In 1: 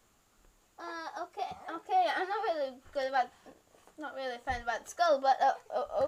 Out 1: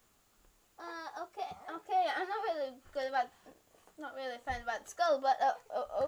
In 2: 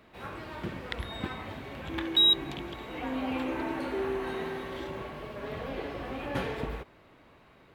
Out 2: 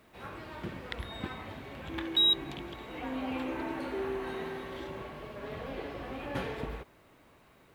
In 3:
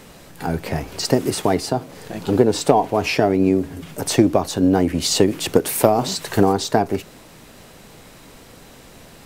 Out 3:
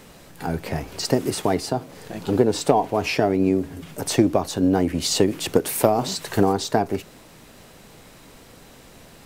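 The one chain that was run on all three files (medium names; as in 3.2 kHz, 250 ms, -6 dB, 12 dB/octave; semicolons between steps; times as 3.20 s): word length cut 12-bit, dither triangular; trim -3 dB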